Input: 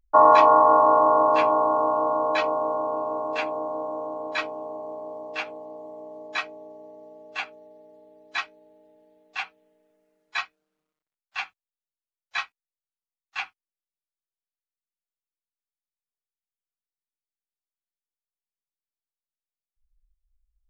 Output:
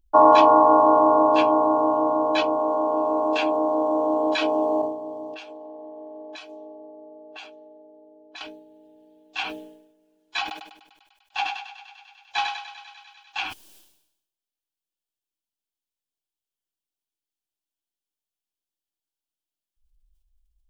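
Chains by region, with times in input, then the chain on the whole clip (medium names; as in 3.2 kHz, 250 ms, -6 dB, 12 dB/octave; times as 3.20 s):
2.59–4.82 s: bass shelf 170 Hz -11.5 dB + level flattener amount 100%
5.34–8.41 s: tone controls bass -12 dB, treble +8 dB + level-controlled noise filter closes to 740 Hz, open at -26 dBFS + compression 10:1, threshold -38 dBFS
10.41–13.38 s: peaking EQ 820 Hz +15 dB 0.2 oct + thinning echo 99 ms, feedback 81%, high-pass 450 Hz, level -12 dB
whole clip: graphic EQ with 31 bands 160 Hz -7 dB, 315 Hz +7 dB, 500 Hz -4 dB, 1.25 kHz -10 dB, 2 kHz -12 dB, 3.15 kHz +5 dB; decay stretcher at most 69 dB/s; trim +3 dB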